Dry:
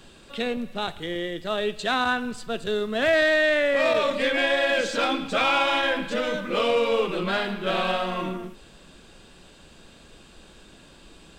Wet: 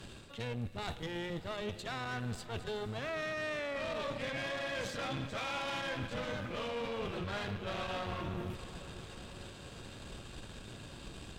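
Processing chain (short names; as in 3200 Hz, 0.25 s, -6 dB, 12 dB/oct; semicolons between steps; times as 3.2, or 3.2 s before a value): octaver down 1 oct, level +2 dB; reverse; compressor 5:1, threshold -36 dBFS, peak gain reduction 18 dB; reverse; tube stage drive 36 dB, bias 0.75; diffused feedback echo 0.515 s, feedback 70%, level -15.5 dB; gain +3.5 dB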